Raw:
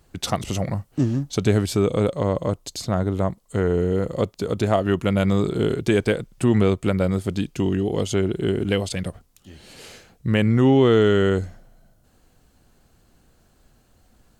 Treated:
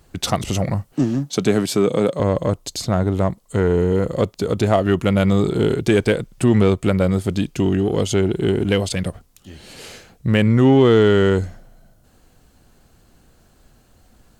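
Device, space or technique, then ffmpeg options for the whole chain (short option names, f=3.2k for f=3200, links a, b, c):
parallel distortion: -filter_complex "[0:a]asettb=1/sr,asplit=3[a][b][c];[a]atrim=end=0.934[d];[b]atrim=start=0.93:end=2.2,asetpts=PTS-STARTPTS,afade=t=in:d=0.004:c=qsin,afade=t=out:st=1.266:d=0.004:c=qsin,highpass=f=140:w=0.5412,highpass=f=140:w=1.3066[e];[c]atrim=start=2.196[f];[d][e]acrossfade=d=0.004:c1=hsin:c2=qsin[g];[g][f]acrossfade=d=0.004:c1=qsin:c2=hsin,asplit=2[h][i];[i]asoftclip=type=hard:threshold=-22dB,volume=-9dB[j];[h][j]amix=inputs=2:normalize=0,volume=2dB"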